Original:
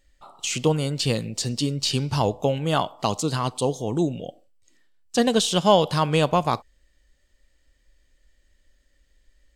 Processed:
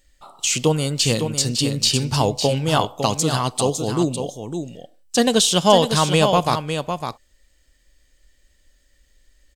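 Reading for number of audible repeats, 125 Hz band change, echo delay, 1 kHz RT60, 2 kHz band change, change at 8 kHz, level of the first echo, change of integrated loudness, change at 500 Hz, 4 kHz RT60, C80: 1, +3.5 dB, 0.555 s, none, +4.5 dB, +9.0 dB, -7.5 dB, +4.0 dB, +3.5 dB, none, none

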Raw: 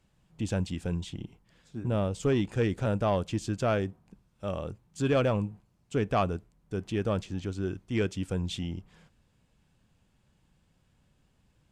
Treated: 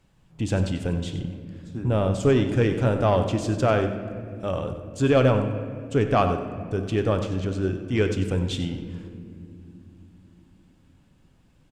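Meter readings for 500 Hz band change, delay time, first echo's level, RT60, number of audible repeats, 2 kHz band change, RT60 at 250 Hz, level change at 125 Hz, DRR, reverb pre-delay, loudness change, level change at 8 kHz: +7.0 dB, 94 ms, -12.0 dB, 2.6 s, 1, +6.5 dB, 4.9 s, +7.0 dB, 6.0 dB, 7 ms, +6.5 dB, +4.0 dB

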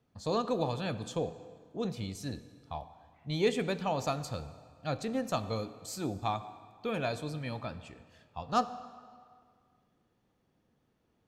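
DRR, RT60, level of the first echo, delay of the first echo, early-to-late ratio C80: 12.0 dB, 2.0 s, none, none, 14.5 dB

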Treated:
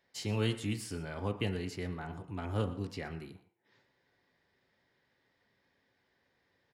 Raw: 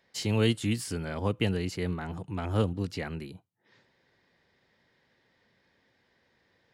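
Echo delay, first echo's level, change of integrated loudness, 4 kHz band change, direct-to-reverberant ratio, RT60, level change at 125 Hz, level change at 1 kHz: 0.118 s, -18.0 dB, -6.5 dB, -6.5 dB, 5.5 dB, 0.60 s, -6.0 dB, -5.0 dB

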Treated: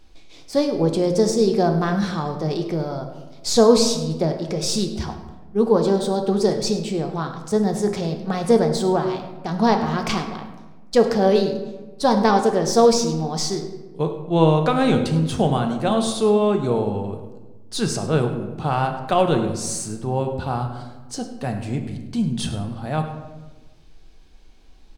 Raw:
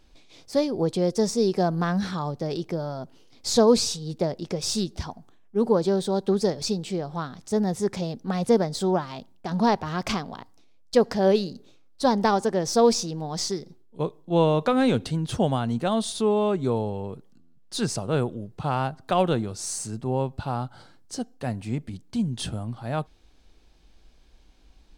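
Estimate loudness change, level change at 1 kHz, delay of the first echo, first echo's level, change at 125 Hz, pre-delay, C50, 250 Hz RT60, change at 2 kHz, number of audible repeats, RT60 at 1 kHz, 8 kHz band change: +4.5 dB, +5.0 dB, 0.102 s, -15.0 dB, +5.0 dB, 3 ms, 7.5 dB, 1.5 s, +4.5 dB, 1, 1.1 s, +3.5 dB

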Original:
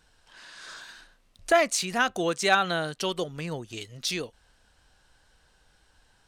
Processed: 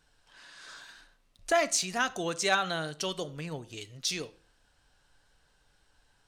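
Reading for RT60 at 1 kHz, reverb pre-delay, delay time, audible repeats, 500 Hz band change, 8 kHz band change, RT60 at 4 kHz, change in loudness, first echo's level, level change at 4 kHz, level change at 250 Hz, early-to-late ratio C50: 0.40 s, 7 ms, none, none, -5.0 dB, 0.0 dB, 0.40 s, -4.0 dB, none, -2.5 dB, -5.5 dB, 19.5 dB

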